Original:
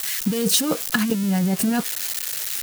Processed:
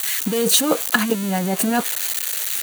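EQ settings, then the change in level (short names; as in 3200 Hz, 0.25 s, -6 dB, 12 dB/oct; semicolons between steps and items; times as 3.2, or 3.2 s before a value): HPF 260 Hz 12 dB/oct; dynamic EQ 770 Hz, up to +4 dB, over -40 dBFS, Q 0.87; notch 5200 Hz, Q 5.9; +3.5 dB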